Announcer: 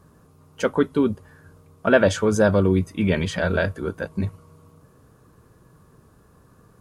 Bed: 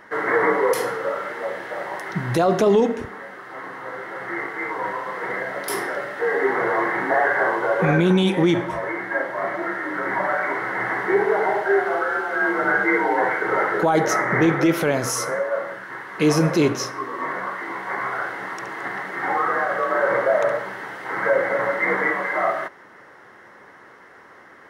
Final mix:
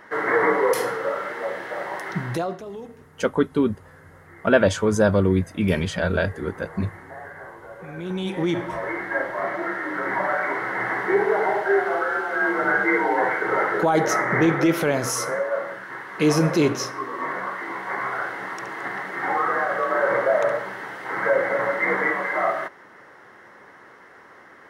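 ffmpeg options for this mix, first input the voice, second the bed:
ffmpeg -i stem1.wav -i stem2.wav -filter_complex "[0:a]adelay=2600,volume=-0.5dB[link_01];[1:a]volume=18.5dB,afade=type=out:start_time=2.13:duration=0.47:silence=0.105925,afade=type=in:start_time=7.92:duration=1:silence=0.112202[link_02];[link_01][link_02]amix=inputs=2:normalize=0" out.wav

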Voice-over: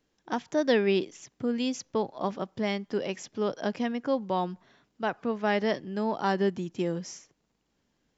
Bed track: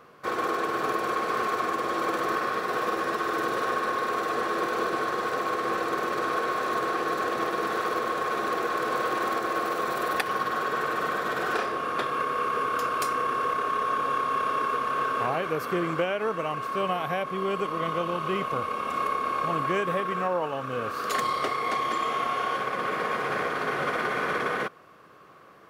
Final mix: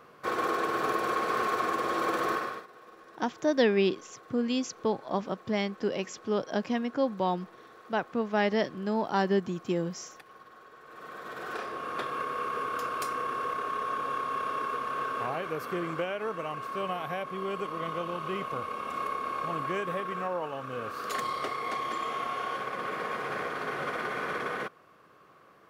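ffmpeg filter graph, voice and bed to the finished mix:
ffmpeg -i stem1.wav -i stem2.wav -filter_complex "[0:a]adelay=2900,volume=0dB[link_01];[1:a]volume=17.5dB,afade=type=out:start_time=2.29:duration=0.38:silence=0.0707946,afade=type=in:start_time=10.84:duration=1.17:silence=0.112202[link_02];[link_01][link_02]amix=inputs=2:normalize=0" out.wav

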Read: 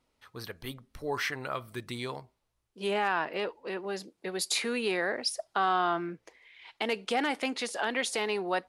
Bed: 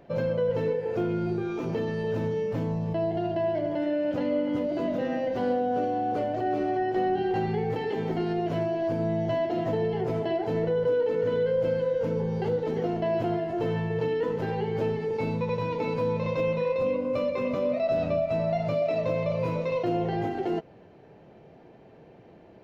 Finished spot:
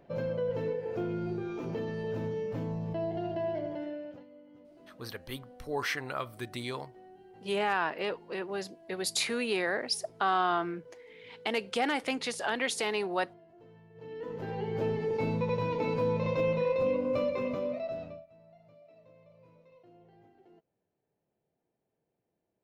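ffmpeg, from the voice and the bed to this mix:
ffmpeg -i stem1.wav -i stem2.wav -filter_complex "[0:a]adelay=4650,volume=-0.5dB[link_01];[1:a]volume=20dB,afade=type=out:start_time=3.55:duration=0.71:silence=0.0794328,afade=type=in:start_time=13.94:duration=1.09:silence=0.0501187,afade=type=out:start_time=17.18:duration=1.08:silence=0.0334965[link_02];[link_01][link_02]amix=inputs=2:normalize=0" out.wav

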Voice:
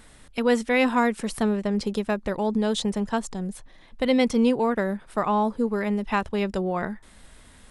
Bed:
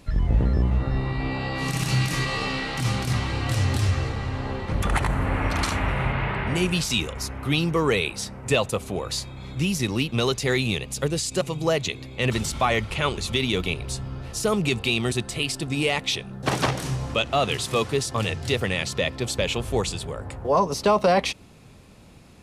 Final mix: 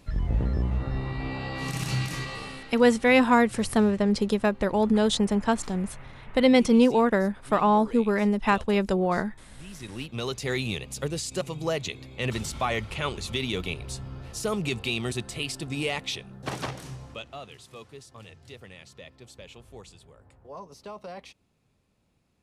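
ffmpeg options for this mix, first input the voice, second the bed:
ffmpeg -i stem1.wav -i stem2.wav -filter_complex "[0:a]adelay=2350,volume=2dB[link_01];[1:a]volume=11.5dB,afade=type=out:start_time=1.91:duration=0.92:silence=0.141254,afade=type=in:start_time=9.65:duration=0.91:silence=0.149624,afade=type=out:start_time=15.87:duration=1.63:silence=0.158489[link_02];[link_01][link_02]amix=inputs=2:normalize=0" out.wav

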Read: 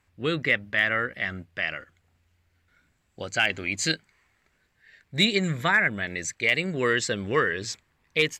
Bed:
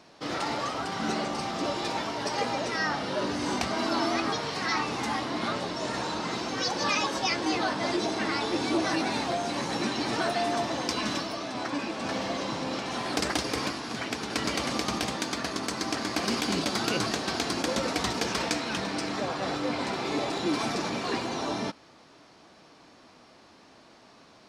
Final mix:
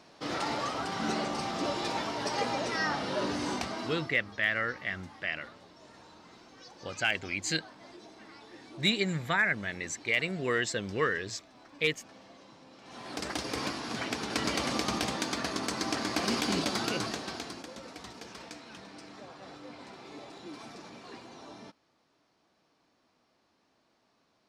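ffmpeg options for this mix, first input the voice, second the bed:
ffmpeg -i stem1.wav -i stem2.wav -filter_complex "[0:a]adelay=3650,volume=-5.5dB[link_01];[1:a]volume=19dB,afade=type=out:start_time=3.35:duration=0.77:silence=0.0944061,afade=type=in:start_time=12.78:duration=1.1:silence=0.0891251,afade=type=out:start_time=16.58:duration=1.1:silence=0.16788[link_02];[link_01][link_02]amix=inputs=2:normalize=0" out.wav

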